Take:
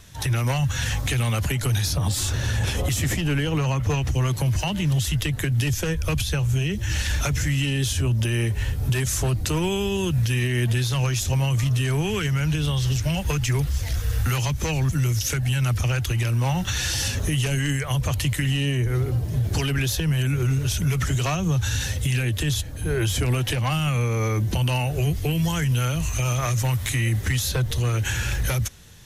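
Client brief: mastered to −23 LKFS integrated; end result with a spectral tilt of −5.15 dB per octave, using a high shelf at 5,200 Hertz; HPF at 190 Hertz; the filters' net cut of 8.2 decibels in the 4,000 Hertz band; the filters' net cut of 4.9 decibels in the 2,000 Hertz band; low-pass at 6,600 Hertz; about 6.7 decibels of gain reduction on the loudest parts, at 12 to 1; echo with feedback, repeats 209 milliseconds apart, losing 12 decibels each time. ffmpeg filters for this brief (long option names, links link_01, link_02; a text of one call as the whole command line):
ffmpeg -i in.wav -af "highpass=190,lowpass=6600,equalizer=frequency=2000:width_type=o:gain=-3,equalizer=frequency=4000:width_type=o:gain=-7,highshelf=frequency=5200:gain=-7,acompressor=threshold=-30dB:ratio=12,aecho=1:1:209|418|627:0.251|0.0628|0.0157,volume=11.5dB" out.wav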